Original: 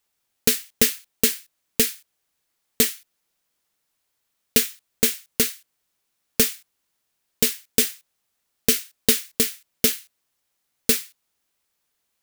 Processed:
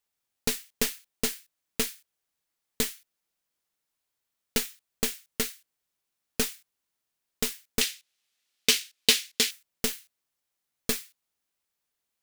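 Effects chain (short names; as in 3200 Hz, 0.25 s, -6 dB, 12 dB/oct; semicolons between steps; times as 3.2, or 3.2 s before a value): tracing distortion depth 0.056 ms; 7.81–9.51 weighting filter D; gain -8 dB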